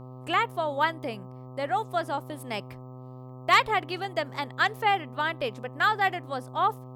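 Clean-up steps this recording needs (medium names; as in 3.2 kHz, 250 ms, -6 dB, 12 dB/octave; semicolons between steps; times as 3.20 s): clip repair -9 dBFS; de-hum 127.8 Hz, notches 10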